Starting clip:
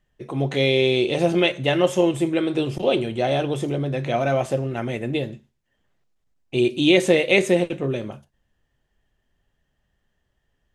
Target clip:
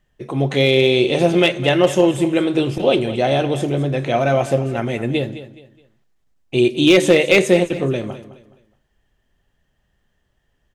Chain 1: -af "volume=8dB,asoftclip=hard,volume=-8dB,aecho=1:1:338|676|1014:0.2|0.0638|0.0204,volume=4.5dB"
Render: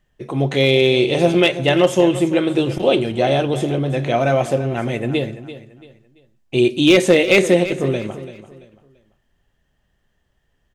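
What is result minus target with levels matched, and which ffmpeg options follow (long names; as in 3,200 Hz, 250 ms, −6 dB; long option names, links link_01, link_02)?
echo 128 ms late
-af "volume=8dB,asoftclip=hard,volume=-8dB,aecho=1:1:210|420|630:0.2|0.0638|0.0204,volume=4.5dB"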